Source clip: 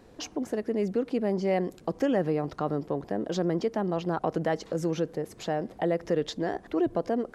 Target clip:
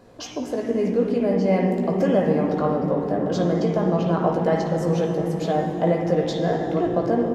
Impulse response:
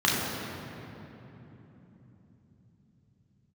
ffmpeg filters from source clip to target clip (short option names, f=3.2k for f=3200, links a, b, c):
-filter_complex "[0:a]asplit=2[a][b];[b]adelay=17,volume=-6.5dB[c];[a][c]amix=inputs=2:normalize=0,asplit=2[d][e];[1:a]atrim=start_sample=2205,asetrate=25578,aresample=44100[f];[e][f]afir=irnorm=-1:irlink=0,volume=-17dB[g];[d][g]amix=inputs=2:normalize=0"